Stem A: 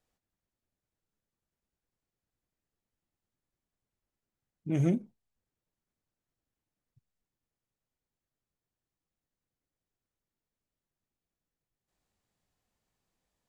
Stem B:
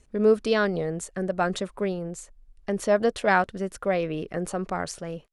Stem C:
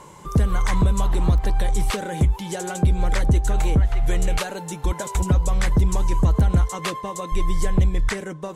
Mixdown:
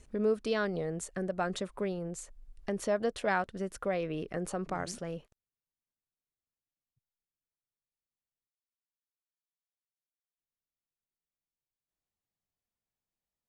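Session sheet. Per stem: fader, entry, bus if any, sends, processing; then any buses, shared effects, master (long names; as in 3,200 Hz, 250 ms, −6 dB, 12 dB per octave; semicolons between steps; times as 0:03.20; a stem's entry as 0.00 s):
−13.5 dB, 0.00 s, muted 0:08.48–0:10.38, no send, no processing
+1.5 dB, 0.00 s, no send, no processing
muted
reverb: not used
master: downward compressor 1.5 to 1, threshold −45 dBFS, peak gain reduction 11.5 dB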